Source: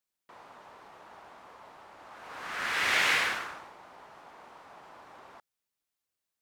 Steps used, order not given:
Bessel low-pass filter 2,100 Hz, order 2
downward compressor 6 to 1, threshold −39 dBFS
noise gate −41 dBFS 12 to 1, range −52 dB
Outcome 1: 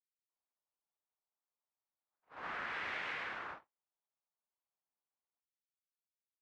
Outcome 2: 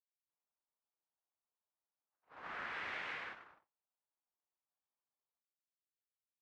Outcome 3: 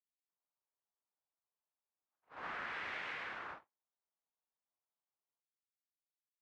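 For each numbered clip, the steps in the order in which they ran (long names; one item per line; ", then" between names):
noise gate, then Bessel low-pass filter, then downward compressor
downward compressor, then noise gate, then Bessel low-pass filter
noise gate, then downward compressor, then Bessel low-pass filter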